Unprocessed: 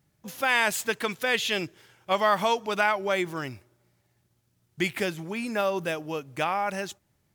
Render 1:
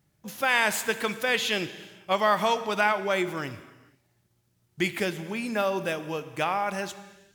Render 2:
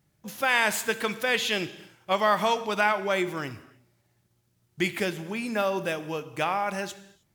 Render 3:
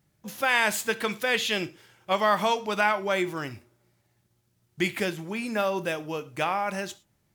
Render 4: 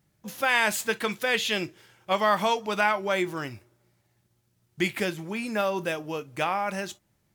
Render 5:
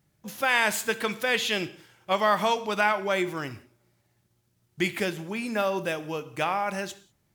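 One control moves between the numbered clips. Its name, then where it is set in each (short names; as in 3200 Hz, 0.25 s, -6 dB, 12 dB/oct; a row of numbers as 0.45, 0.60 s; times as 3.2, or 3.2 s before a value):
non-linear reverb, gate: 520, 340, 140, 80, 220 ms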